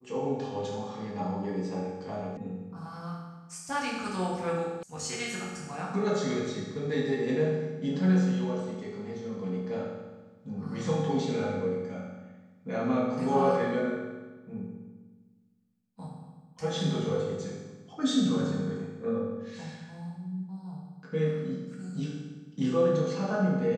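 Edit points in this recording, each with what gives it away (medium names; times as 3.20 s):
2.37 s: sound stops dead
4.83 s: sound stops dead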